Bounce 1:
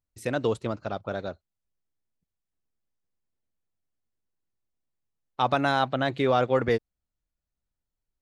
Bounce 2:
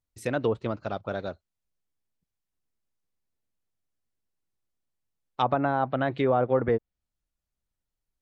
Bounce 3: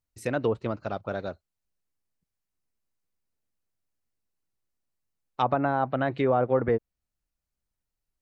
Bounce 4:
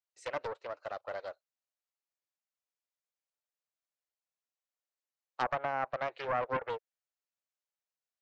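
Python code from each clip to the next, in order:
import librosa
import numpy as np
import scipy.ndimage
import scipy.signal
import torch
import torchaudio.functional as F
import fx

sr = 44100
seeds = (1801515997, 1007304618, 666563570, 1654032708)

y1 = fx.env_lowpass_down(x, sr, base_hz=1100.0, full_db=-19.5)
y2 = fx.peak_eq(y1, sr, hz=3400.0, db=-5.5, octaves=0.21)
y3 = scipy.signal.sosfilt(scipy.signal.ellip(3, 1.0, 40, [530.0, 7400.0], 'bandpass', fs=sr, output='sos'), y2)
y3 = fx.doppler_dist(y3, sr, depth_ms=0.48)
y3 = F.gain(torch.from_numpy(y3), -6.0).numpy()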